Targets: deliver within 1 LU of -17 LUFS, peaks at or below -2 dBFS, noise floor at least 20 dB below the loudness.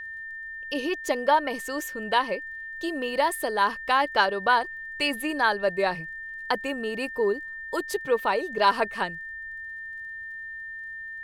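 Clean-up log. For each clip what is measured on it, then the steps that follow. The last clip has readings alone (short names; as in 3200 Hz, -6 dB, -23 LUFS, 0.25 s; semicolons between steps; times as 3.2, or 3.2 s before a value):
ticks 19/s; steady tone 1800 Hz; tone level -35 dBFS; loudness -27.0 LUFS; peak -8.5 dBFS; loudness target -17.0 LUFS
-> de-click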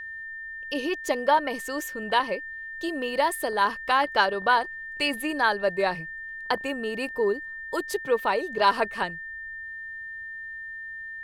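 ticks 0.36/s; steady tone 1800 Hz; tone level -35 dBFS
-> notch 1800 Hz, Q 30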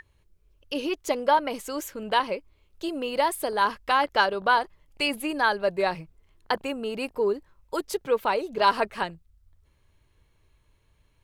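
steady tone none; loudness -26.5 LUFS; peak -9.0 dBFS; loudness target -17.0 LUFS
-> gain +9.5 dB; limiter -2 dBFS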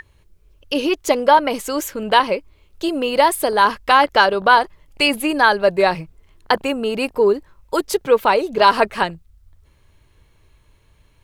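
loudness -17.5 LUFS; peak -2.0 dBFS; noise floor -56 dBFS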